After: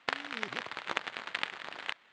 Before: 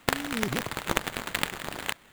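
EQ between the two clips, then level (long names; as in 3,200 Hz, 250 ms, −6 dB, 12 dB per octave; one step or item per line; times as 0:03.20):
high-pass filter 1,300 Hz 6 dB per octave
elliptic low-pass filter 9,400 Hz, stop band 40 dB
high-frequency loss of the air 200 metres
0.0 dB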